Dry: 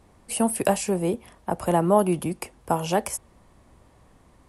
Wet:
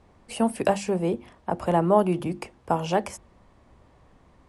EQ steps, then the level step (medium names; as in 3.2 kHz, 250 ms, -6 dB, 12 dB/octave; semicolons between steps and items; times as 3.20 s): distance through air 83 m; hum notches 50/100/150/200/250/300/350 Hz; 0.0 dB